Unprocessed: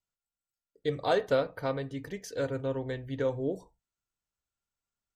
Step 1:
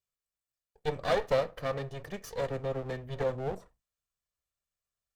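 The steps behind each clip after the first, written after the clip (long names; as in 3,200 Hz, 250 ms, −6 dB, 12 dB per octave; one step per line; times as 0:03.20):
lower of the sound and its delayed copy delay 1.7 ms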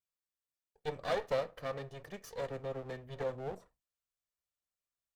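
low-shelf EQ 130 Hz −5.5 dB
level −5.5 dB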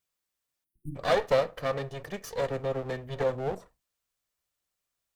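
time-frequency box erased 0:00.64–0:00.96, 360–8,700 Hz
level +9 dB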